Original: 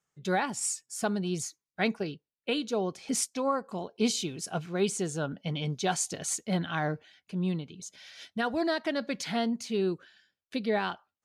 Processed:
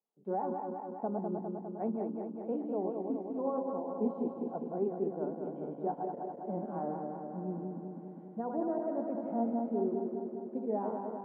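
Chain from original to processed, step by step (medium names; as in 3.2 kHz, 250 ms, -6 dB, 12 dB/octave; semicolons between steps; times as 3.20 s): backward echo that repeats 101 ms, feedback 83%, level -4 dB; Chebyshev band-pass 210–900 Hz, order 3; trim -5 dB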